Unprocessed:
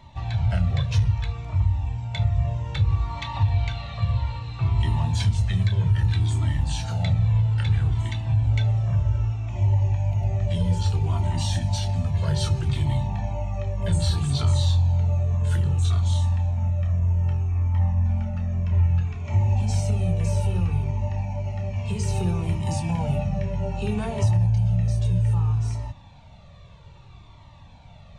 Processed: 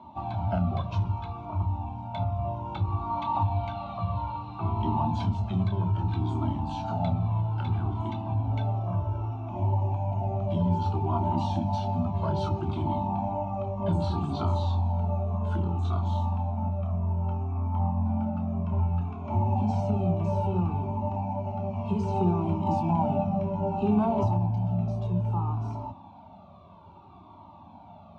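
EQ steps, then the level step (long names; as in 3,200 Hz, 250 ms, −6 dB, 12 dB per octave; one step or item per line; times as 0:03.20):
high-pass filter 110 Hz 24 dB per octave
low-pass filter 1,400 Hz 12 dB per octave
phaser with its sweep stopped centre 490 Hz, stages 6
+8.0 dB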